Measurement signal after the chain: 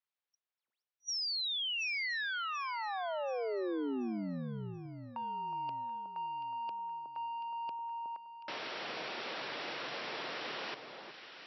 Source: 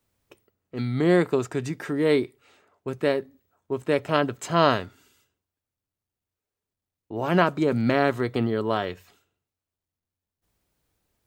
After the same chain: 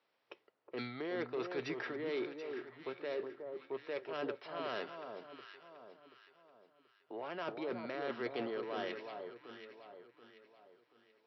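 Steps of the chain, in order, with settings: three-band isolator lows -22 dB, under 380 Hz, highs -16 dB, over 4.5 kHz; reverse; compression 12:1, threshold -34 dBFS; reverse; saturation -31.5 dBFS; dynamic bell 950 Hz, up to -4 dB, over -49 dBFS, Q 0.97; FFT band-pass 110–5800 Hz; echo whose repeats swap between lows and highs 366 ms, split 1.2 kHz, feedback 61%, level -5.5 dB; trim +1.5 dB

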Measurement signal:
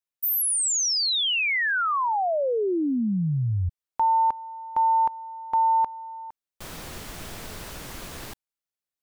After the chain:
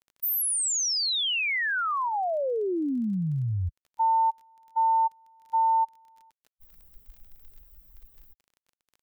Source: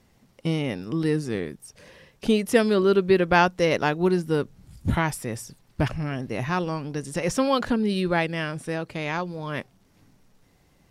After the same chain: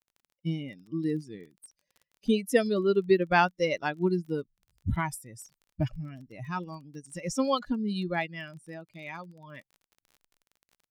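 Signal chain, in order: expander on every frequency bin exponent 2; crackle 28 per s -44 dBFS; trim -1.5 dB

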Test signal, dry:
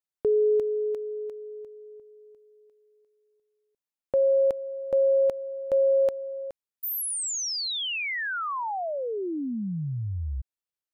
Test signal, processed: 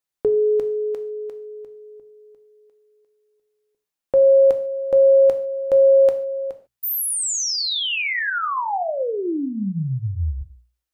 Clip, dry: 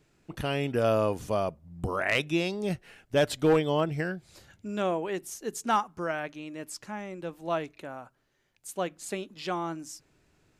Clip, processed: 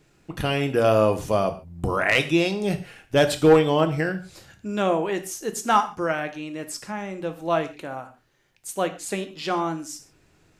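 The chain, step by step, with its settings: hum notches 60/120/180/240 Hz; gated-style reverb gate 170 ms falling, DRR 7.5 dB; trim +6 dB

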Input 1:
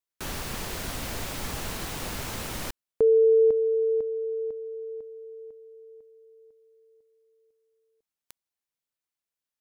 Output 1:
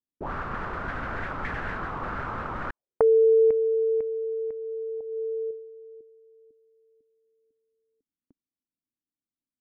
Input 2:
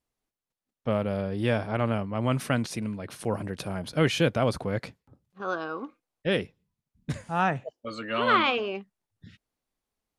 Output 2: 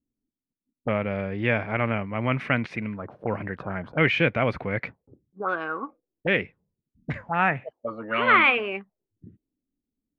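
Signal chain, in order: touch-sensitive low-pass 270–2200 Hz up, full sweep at -27.5 dBFS

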